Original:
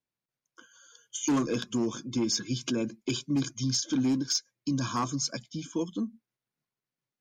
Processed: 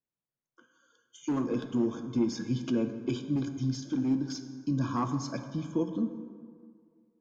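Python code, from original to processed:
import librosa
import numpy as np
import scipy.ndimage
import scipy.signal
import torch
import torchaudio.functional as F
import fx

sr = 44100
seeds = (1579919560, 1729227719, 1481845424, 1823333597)

y = fx.lowpass(x, sr, hz=1000.0, slope=6)
y = fx.rider(y, sr, range_db=3, speed_s=0.5)
y = fx.rev_plate(y, sr, seeds[0], rt60_s=2.0, hf_ratio=0.5, predelay_ms=0, drr_db=7.0)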